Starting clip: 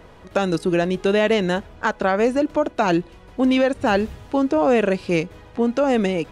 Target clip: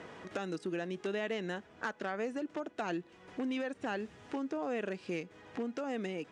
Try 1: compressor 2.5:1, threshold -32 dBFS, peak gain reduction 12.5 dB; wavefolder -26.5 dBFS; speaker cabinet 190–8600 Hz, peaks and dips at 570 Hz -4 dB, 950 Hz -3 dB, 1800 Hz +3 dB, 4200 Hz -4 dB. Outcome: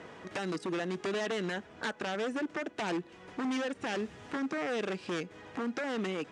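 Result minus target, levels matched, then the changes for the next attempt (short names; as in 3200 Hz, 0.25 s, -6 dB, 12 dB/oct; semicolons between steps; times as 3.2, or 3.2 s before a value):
compressor: peak gain reduction -5.5 dB
change: compressor 2.5:1, threshold -41 dBFS, peak gain reduction 17.5 dB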